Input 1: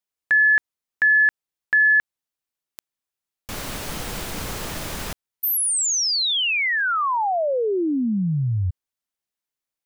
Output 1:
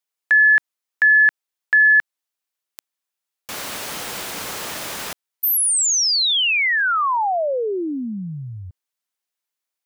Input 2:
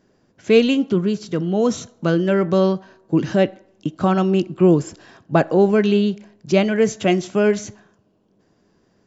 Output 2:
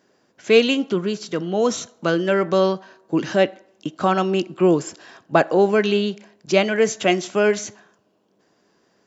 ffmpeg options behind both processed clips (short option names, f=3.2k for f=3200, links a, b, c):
-af "highpass=f=550:p=1,volume=3.5dB"